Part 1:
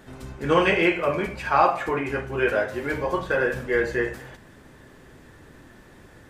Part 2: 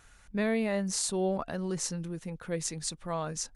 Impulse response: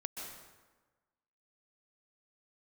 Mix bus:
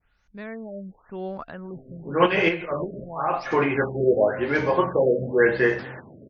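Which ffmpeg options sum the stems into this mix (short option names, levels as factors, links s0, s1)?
-filter_complex "[0:a]highpass=f=100:w=0.5412,highpass=f=100:w=1.3066,adelay=1650,volume=0.891[s0];[1:a]adynamicequalizer=threshold=0.00398:dfrequency=1400:dqfactor=1.2:tfrequency=1400:tqfactor=1.2:attack=5:release=100:ratio=0.375:range=3:mode=boostabove:tftype=bell,volume=0.335,asplit=2[s1][s2];[s2]apad=whole_len=350328[s3];[s0][s3]sidechaincompress=threshold=0.002:ratio=6:attack=26:release=106[s4];[s4][s1]amix=inputs=2:normalize=0,dynaudnorm=f=140:g=11:m=2,afftfilt=real='re*lt(b*sr/1024,650*pow(6800/650,0.5+0.5*sin(2*PI*0.92*pts/sr)))':imag='im*lt(b*sr/1024,650*pow(6800/650,0.5+0.5*sin(2*PI*0.92*pts/sr)))':win_size=1024:overlap=0.75"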